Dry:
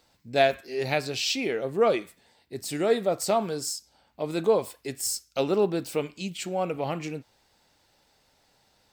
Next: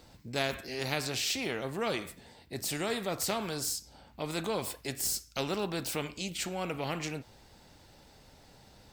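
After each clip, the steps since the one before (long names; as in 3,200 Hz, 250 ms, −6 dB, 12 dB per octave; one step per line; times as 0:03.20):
low-shelf EQ 380 Hz +10.5 dB
every bin compressed towards the loudest bin 2 to 1
level −9 dB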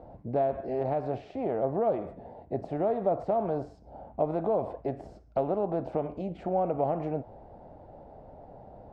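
downward compressor, threshold −34 dBFS, peak gain reduction 8 dB
low-pass with resonance 680 Hz, resonance Q 3.5
level +6 dB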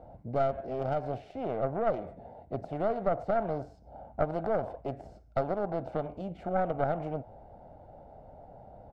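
stylus tracing distortion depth 0.21 ms
comb filter 1.4 ms, depth 31%
level −3 dB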